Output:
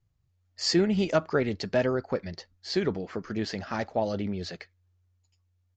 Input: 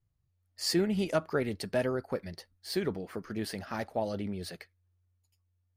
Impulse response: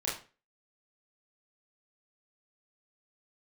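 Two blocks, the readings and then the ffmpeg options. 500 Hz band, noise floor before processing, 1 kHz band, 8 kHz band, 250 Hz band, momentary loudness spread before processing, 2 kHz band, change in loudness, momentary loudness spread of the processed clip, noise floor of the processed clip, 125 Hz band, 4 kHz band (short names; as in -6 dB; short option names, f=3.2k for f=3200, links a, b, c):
+4.5 dB, -76 dBFS, +4.5 dB, +1.5 dB, +4.5 dB, 11 LU, +4.5 dB, +4.5 dB, 11 LU, -72 dBFS, +4.5 dB, +4.5 dB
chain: -af "aresample=16000,aresample=44100,volume=4.5dB"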